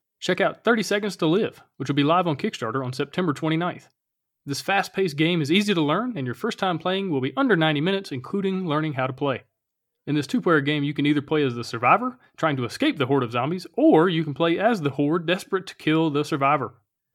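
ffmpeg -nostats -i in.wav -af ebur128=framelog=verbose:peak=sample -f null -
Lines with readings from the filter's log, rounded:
Integrated loudness:
  I:         -23.2 LUFS
  Threshold: -33.4 LUFS
Loudness range:
  LRA:         3.2 LU
  Threshold: -43.5 LUFS
  LRA low:   -25.1 LUFS
  LRA high:  -21.9 LUFS
Sample peak:
  Peak:       -3.7 dBFS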